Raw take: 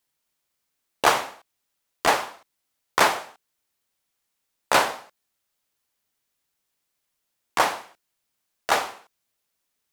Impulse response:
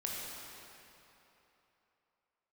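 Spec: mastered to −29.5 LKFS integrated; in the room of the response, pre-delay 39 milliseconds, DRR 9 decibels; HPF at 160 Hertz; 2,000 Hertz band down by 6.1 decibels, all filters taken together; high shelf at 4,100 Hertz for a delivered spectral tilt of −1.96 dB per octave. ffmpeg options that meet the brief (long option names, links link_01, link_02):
-filter_complex "[0:a]highpass=160,equalizer=frequency=2000:width_type=o:gain=-6.5,highshelf=frequency=4100:gain=-8,asplit=2[link_01][link_02];[1:a]atrim=start_sample=2205,adelay=39[link_03];[link_02][link_03]afir=irnorm=-1:irlink=0,volume=-11.5dB[link_04];[link_01][link_04]amix=inputs=2:normalize=0,volume=-2dB"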